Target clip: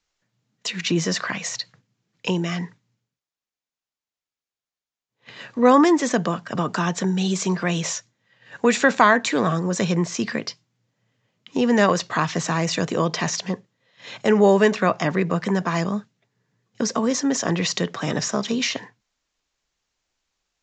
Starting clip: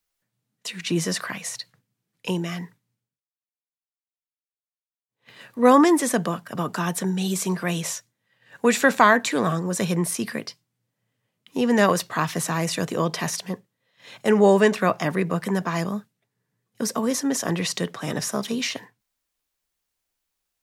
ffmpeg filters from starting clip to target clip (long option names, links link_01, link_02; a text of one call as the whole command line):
ffmpeg -i in.wav -filter_complex "[0:a]asplit=2[link_01][link_02];[link_02]acompressor=threshold=-30dB:ratio=6,volume=2.5dB[link_03];[link_01][link_03]amix=inputs=2:normalize=0,aresample=16000,aresample=44100,volume=-1dB" out.wav